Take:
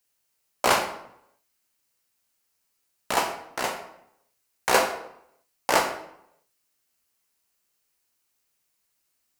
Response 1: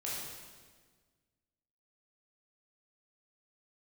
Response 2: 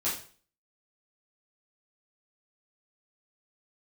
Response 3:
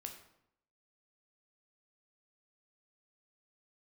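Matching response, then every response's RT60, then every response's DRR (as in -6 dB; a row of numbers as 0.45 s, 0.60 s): 3; 1.5 s, 0.45 s, 0.75 s; -7.0 dB, -10.5 dB, 3.0 dB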